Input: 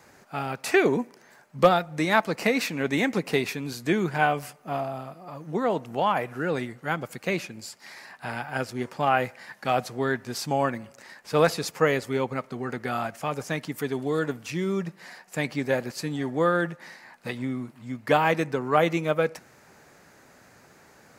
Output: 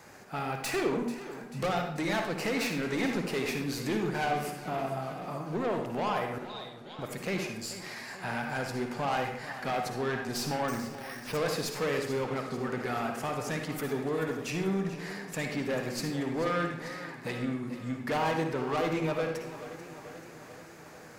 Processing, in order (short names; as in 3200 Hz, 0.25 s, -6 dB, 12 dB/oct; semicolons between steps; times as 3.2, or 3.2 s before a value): tracing distortion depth 0.027 ms; in parallel at +1 dB: compressor, threshold -34 dBFS, peak gain reduction 20 dB; 6.38–6.99 on the sum: ladder band-pass 3900 Hz, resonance 85%; soft clip -22 dBFS, distortion -8 dB; on a send at -3.5 dB: reverb RT60 0.65 s, pre-delay 47 ms; 10.68–11.37 on the sum: careless resampling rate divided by 6×, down none, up hold; warbling echo 0.438 s, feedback 64%, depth 53 cents, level -14 dB; gain -5 dB